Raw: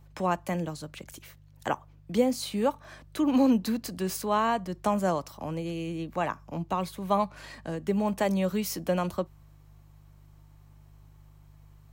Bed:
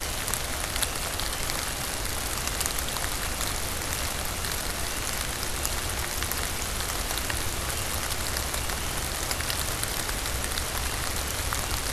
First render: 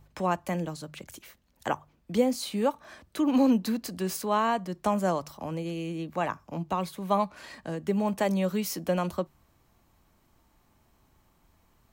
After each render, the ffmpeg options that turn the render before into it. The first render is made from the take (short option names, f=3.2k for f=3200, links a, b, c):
-af "bandreject=f=50:t=h:w=4,bandreject=f=100:t=h:w=4,bandreject=f=150:t=h:w=4"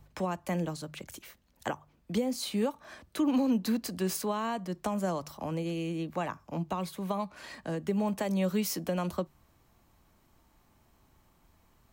-filter_complex "[0:a]alimiter=limit=-19dB:level=0:latency=1:release=266,acrossover=split=330|3000[a][b][c];[b]acompressor=threshold=-30dB:ratio=6[d];[a][d][c]amix=inputs=3:normalize=0"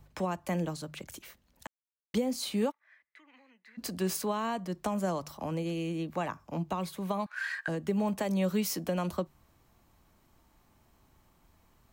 -filter_complex "[0:a]asplit=3[a][b][c];[a]afade=t=out:st=2.7:d=0.02[d];[b]bandpass=f=2k:t=q:w=11,afade=t=in:st=2.7:d=0.02,afade=t=out:st=3.77:d=0.02[e];[c]afade=t=in:st=3.77:d=0.02[f];[d][e][f]amix=inputs=3:normalize=0,asettb=1/sr,asplit=3[g][h][i];[g]atrim=end=7.264[j];[h]atrim=start=7.26:end=7.68,asetpts=PTS-STARTPTS,afade=t=in:d=0.004:c=qsin,afade=t=out:st=0.416:d=0.004:c=qsin,highpass=f=1.6k:t=q:w=11[k];[i]atrim=start=7.676[l];[j][k]acrossfade=d=0.004:c1=hsin:c2=qsin[m];[m][l]acrossfade=d=0.004:c1=qsin:c2=hsin,asplit=3[n][o][p];[n]atrim=end=1.67,asetpts=PTS-STARTPTS,afade=t=out:st=1.666:d=0.004:c=hsin[q];[o]atrim=start=1.67:end=2.14,asetpts=PTS-STARTPTS,volume=0[r];[p]atrim=start=2.14,asetpts=PTS-STARTPTS,afade=t=in:d=0.004:c=hsin[s];[q][r][s]concat=n=3:v=0:a=1"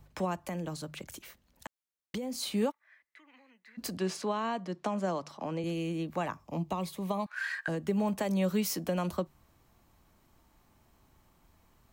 -filter_complex "[0:a]asettb=1/sr,asplit=3[a][b][c];[a]atrim=end=0.474[d];[b]atrim=start=0.47:end=2.36,asetpts=PTS-STARTPTS,afade=t=in:d=0.004:c=qsin,afade=t=out:st=1.886:d=0.004:c=qsin,acompressor=threshold=-32dB:ratio=6:attack=3.2:release=140:knee=1:detection=peak[e];[c]atrim=start=2.356[f];[d][e]acrossfade=d=0.004:c1=hsin:c2=qsin[g];[g][f]acrossfade=d=0.004:c1=qsin:c2=hsin,asettb=1/sr,asplit=3[h][i][j];[h]atrim=end=3.974[k];[i]atrim=start=3.97:end=5.64,asetpts=PTS-STARTPTS,afade=t=in:d=0.004:c=qsin,afade=t=out:st=1.666:d=0.004:c=qsin,highpass=170,lowpass=5.8k[l];[j]atrim=start=5.636[m];[k][l]acrossfade=d=0.004:c1=hsin:c2=qsin[n];[n][m]acrossfade=d=0.004:c1=qsin:c2=hsin,asettb=1/sr,asplit=3[o][p][q];[o]atrim=end=6.354[r];[p]atrim=start=6.35:end=7.28,asetpts=PTS-STARTPTS,afade=t=in:d=0.004:c=qsin,afade=t=out:st=0.926:d=0.004:c=qsin,equalizer=f=1.5k:t=o:w=0.32:g=-10.5[s];[q]atrim=start=7.276[t];[r][s]acrossfade=d=0.004:c1=hsin:c2=qsin[u];[u][t]acrossfade=d=0.004:c1=qsin:c2=hsin"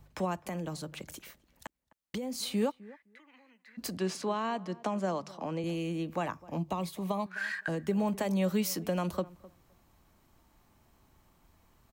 -filter_complex "[0:a]asplit=2[a][b];[b]adelay=257,lowpass=f=1.4k:p=1,volume=-20dB,asplit=2[c][d];[d]adelay=257,lowpass=f=1.4k:p=1,volume=0.16[e];[a][c][e]amix=inputs=3:normalize=0"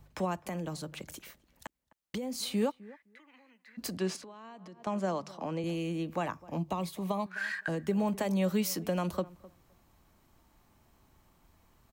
-filter_complex "[0:a]asettb=1/sr,asplit=3[a][b][c];[a]atrim=end=4.164[d];[b]atrim=start=4.16:end=4.87,asetpts=PTS-STARTPTS,afade=t=in:d=0.004:c=qsin,afade=t=out:st=0.706:d=0.004:c=qsin,acompressor=threshold=-45dB:ratio=12:attack=3.2:release=140:knee=1:detection=peak[e];[c]atrim=start=4.866[f];[d][e]acrossfade=d=0.004:c1=hsin:c2=qsin[g];[g][f]acrossfade=d=0.004:c1=qsin:c2=hsin"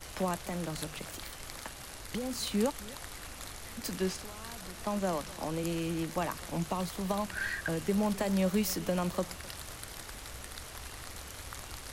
-filter_complex "[1:a]volume=-15dB[a];[0:a][a]amix=inputs=2:normalize=0"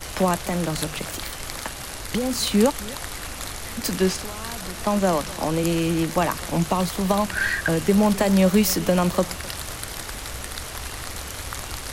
-af "volume=11.5dB"